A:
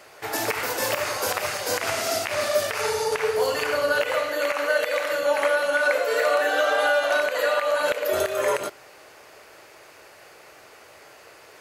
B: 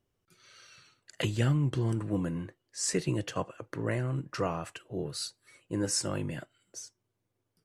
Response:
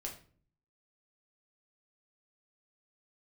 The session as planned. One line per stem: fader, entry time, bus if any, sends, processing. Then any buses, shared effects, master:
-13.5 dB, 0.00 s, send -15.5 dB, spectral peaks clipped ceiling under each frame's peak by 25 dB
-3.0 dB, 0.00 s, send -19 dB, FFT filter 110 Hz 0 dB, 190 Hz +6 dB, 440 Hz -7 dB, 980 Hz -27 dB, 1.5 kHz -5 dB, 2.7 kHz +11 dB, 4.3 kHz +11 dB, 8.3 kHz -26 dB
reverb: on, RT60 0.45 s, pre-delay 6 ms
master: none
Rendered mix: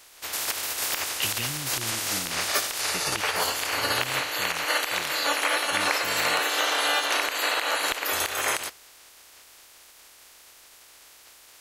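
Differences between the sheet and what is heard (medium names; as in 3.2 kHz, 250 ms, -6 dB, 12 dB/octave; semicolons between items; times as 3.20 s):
stem A -13.5 dB -> -3.5 dB; master: extra peaking EQ 160 Hz -13.5 dB 1.5 oct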